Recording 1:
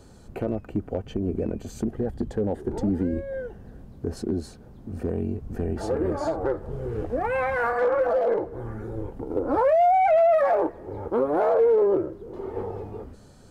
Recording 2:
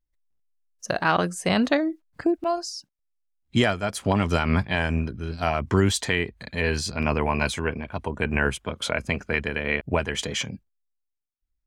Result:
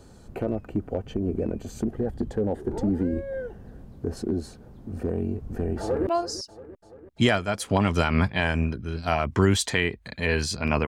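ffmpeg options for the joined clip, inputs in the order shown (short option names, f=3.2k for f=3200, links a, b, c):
-filter_complex "[0:a]apad=whole_dur=10.87,atrim=end=10.87,atrim=end=6.072[a];[1:a]atrim=start=2.418:end=7.22[b];[a][b]acrossfade=d=0.004:c1=hsin:c2=hsin,asplit=2[c][d];[d]afade=t=in:st=5.8:d=0.01,afade=t=out:st=6.07:d=0.01,aecho=0:1:340|680|1020|1360|1700|2040|2380:0.188365|0.122437|0.0795842|0.0517297|0.0336243|0.0218558|0.0142063[e];[c][e]amix=inputs=2:normalize=0"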